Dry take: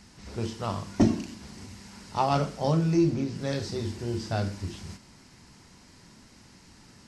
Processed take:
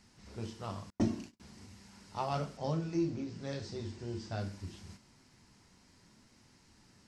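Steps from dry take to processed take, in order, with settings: flange 0.77 Hz, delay 7.6 ms, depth 3.4 ms, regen -65%; 0.9–1.4 gate -41 dBFS, range -37 dB; 2.57–4.4 LPF 8100 Hz 24 dB/oct; gain -5.5 dB

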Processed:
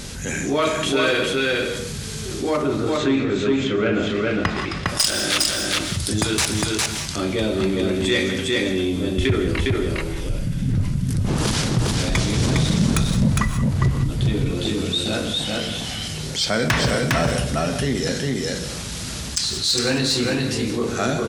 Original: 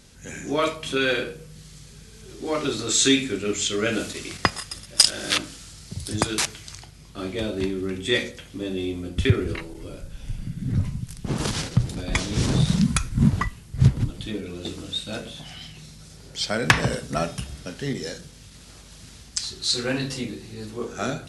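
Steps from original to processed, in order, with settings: 2.56–4.85 LPF 1400 Hz -> 2600 Hz 12 dB/oct; soft clip -14 dBFS, distortion -12 dB; echo 0.407 s -3 dB; non-linear reverb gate 0.21 s rising, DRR 12 dB; fast leveller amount 50%

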